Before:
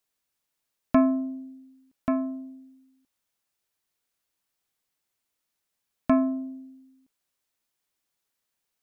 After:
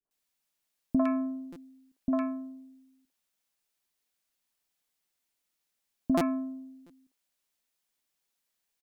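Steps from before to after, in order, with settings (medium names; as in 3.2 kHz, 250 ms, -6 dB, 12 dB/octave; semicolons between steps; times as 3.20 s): peaking EQ 100 Hz -10.5 dB 0.78 oct; three bands offset in time lows, mids, highs 50/110 ms, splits 400/1200 Hz; compression 4:1, threshold -23 dBFS, peak gain reduction 5.5 dB; buffer glitch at 1.52/6.17/6.86 s, samples 256, times 6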